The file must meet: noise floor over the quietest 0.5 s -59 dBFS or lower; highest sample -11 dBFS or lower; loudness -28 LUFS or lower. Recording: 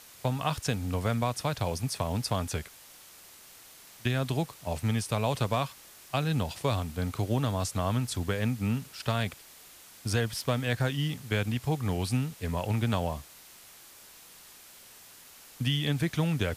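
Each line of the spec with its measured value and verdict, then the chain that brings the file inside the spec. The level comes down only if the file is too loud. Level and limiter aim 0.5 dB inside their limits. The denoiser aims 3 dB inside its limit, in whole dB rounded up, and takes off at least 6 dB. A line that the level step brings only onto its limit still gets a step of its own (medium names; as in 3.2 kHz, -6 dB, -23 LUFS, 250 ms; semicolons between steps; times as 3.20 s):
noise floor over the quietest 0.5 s -52 dBFS: fail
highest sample -14.5 dBFS: pass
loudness -30.5 LUFS: pass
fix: noise reduction 10 dB, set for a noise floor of -52 dBFS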